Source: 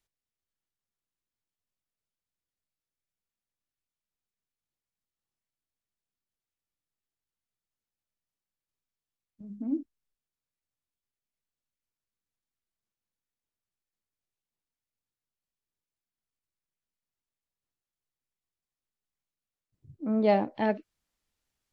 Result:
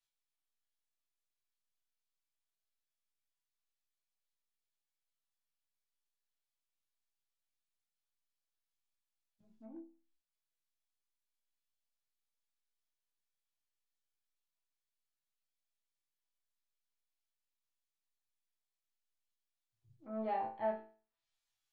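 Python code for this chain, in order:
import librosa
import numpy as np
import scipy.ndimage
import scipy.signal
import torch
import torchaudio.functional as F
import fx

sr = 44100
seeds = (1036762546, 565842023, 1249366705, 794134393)

p1 = fx.resonator_bank(x, sr, root=45, chord='minor', decay_s=0.39)
p2 = np.clip(p1, -10.0 ** (-36.5 / 20.0), 10.0 ** (-36.5 / 20.0))
p3 = p1 + (p2 * 10.0 ** (-9.0 / 20.0))
p4 = fx.low_shelf_res(p3, sr, hz=370.0, db=-7.5, q=1.5)
p5 = fx.env_lowpass_down(p4, sr, base_hz=1300.0, full_db=-50.5)
p6 = fx.graphic_eq(p5, sr, hz=(250, 500, 4000), db=(-5, -10, 4))
p7 = p6 + fx.room_early_taps(p6, sr, ms=(17, 27), db=(-7.5, -7.5), dry=0)
y = p7 * 10.0 ** (5.5 / 20.0)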